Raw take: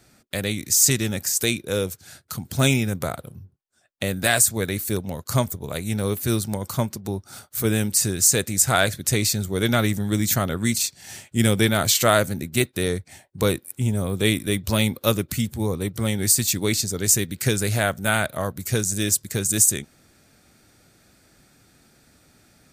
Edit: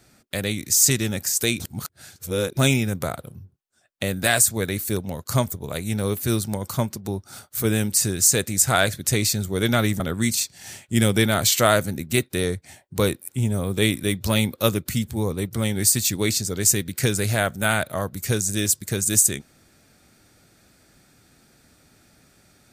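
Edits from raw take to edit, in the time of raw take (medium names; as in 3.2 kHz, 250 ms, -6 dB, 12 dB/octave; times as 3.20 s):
1.60–2.57 s: reverse
10.00–10.43 s: delete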